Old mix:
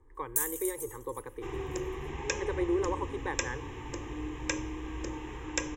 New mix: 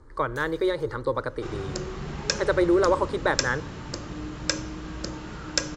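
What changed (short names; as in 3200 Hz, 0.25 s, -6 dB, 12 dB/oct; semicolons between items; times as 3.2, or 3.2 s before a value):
speech +8.5 dB; first sound: add air absorption 270 m; master: remove fixed phaser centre 930 Hz, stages 8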